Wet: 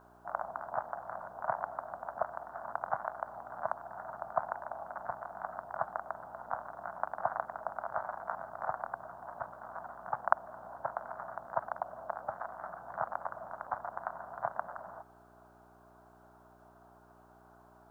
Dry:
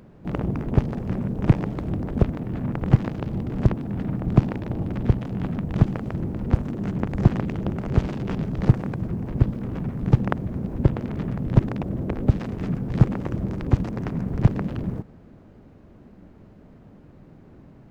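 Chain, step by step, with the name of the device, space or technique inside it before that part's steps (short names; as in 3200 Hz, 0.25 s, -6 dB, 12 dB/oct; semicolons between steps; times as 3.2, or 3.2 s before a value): elliptic band-pass 660–1500 Hz, stop band 40 dB; video cassette with head-switching buzz (buzz 60 Hz, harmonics 7, -67 dBFS -1 dB/oct; white noise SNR 40 dB); gain +3 dB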